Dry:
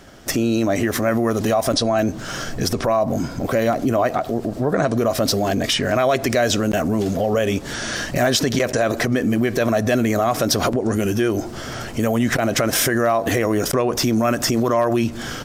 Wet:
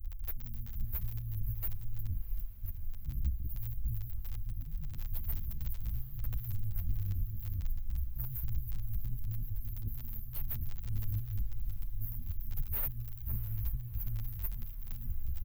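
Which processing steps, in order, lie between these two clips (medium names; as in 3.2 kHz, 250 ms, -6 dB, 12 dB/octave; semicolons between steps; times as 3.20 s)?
in parallel at +2 dB: peak limiter -15 dBFS, peak gain reduction 9 dB; on the sum: crackle 28 per s -22 dBFS; inverse Chebyshev band-stop 290–5600 Hz, stop band 80 dB; tone controls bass -2 dB, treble -5 dB; compressor with a negative ratio -41 dBFS, ratio -1; peaking EQ 9.2 kHz -2.5 dB 0.33 oct; saturation -39 dBFS, distortion -14 dB; on a send: echo that smears into a reverb 697 ms, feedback 64%, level -14 dB; on the sum: endless flanger 9.5 ms -0.41 Hz; trim +14.5 dB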